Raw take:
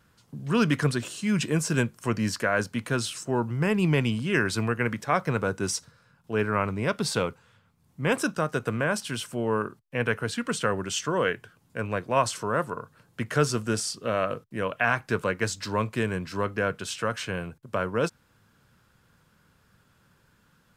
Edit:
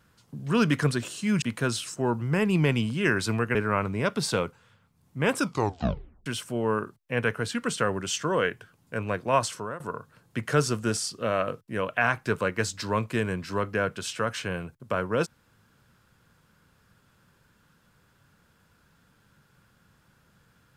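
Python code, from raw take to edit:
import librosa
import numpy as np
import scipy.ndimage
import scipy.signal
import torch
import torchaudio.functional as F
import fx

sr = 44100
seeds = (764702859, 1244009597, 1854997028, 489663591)

y = fx.edit(x, sr, fx.cut(start_s=1.42, length_s=1.29),
    fx.cut(start_s=4.84, length_s=1.54),
    fx.tape_stop(start_s=8.21, length_s=0.88),
    fx.fade_out_to(start_s=12.17, length_s=0.46, curve='qsin', floor_db=-19.5), tone=tone)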